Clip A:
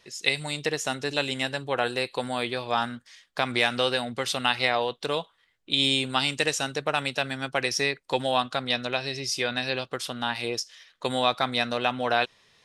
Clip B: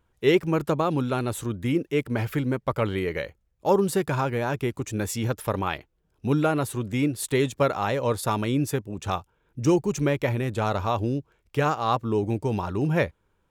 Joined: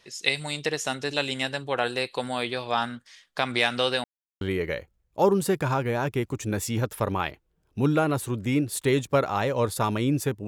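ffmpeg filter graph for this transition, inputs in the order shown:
-filter_complex "[0:a]apad=whole_dur=10.47,atrim=end=10.47,asplit=2[a][b];[a]atrim=end=4.04,asetpts=PTS-STARTPTS,afade=t=out:st=4.036:d=0.004:c=hsin[c];[b]atrim=start=4.04:end=4.41,asetpts=PTS-STARTPTS,volume=0[d];[1:a]atrim=start=2.88:end=8.94,asetpts=PTS-STARTPTS,afade=t=in:d=0.004:c=hsin[e];[c][d][e]concat=n=3:v=0:a=1"

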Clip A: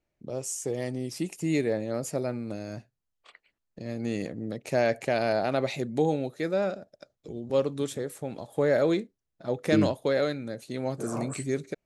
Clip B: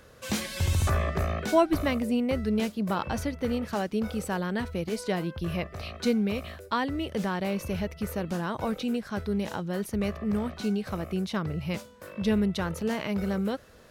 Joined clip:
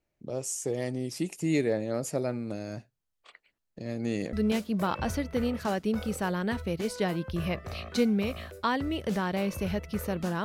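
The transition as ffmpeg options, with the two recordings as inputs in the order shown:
-filter_complex "[0:a]apad=whole_dur=10.44,atrim=end=10.44,atrim=end=4.332[a];[1:a]atrim=start=2.408:end=8.52[b];[a][b]acrossfade=d=0.004:c1=hsin:c2=hsin"

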